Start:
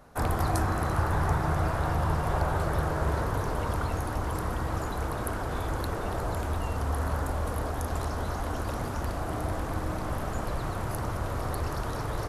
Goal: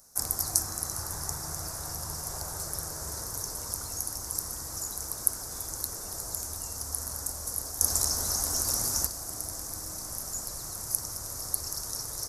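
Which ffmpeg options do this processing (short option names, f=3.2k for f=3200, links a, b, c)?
-filter_complex "[0:a]highshelf=f=4.2k:t=q:w=3:g=11,asettb=1/sr,asplit=3[a][b][c];[a]atrim=end=7.814[d];[b]atrim=start=7.81:end=9.07,asetpts=PTS-STARTPTS,afade=t=in:d=0.004:c=qsin,afade=t=out:st=1.256:d=0.004:c=qsin,acontrast=84[e];[c]atrim=start=9.066[f];[d][e]acrossfade=d=0.004:c1=hsin:c2=qsin[g];[g][f]acrossfade=d=0.004:c1=qsin:c2=hsin,crystalizer=i=4.5:c=0,volume=-14.5dB"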